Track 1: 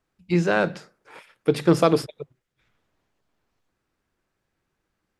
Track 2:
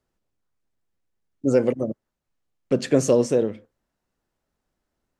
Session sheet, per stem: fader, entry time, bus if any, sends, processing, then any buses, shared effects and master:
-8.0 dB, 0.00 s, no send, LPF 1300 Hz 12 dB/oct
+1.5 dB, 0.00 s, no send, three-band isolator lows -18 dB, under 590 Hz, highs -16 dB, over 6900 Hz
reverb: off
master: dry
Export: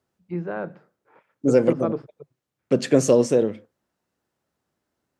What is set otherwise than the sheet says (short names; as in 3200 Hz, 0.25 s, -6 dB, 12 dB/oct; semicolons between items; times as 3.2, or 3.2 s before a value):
stem 2: missing three-band isolator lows -18 dB, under 590 Hz, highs -16 dB, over 6900 Hz; master: extra HPF 95 Hz